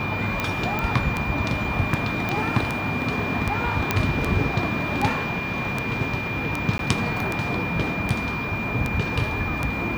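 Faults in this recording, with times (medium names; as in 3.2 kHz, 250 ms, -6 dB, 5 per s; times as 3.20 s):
tick 78 rpm -10 dBFS
whine 2.4 kHz -29 dBFS
0.79 s: pop -12 dBFS
2.29 s: pop -12 dBFS
3.91 s: pop -4 dBFS
6.78–6.79 s: dropout 12 ms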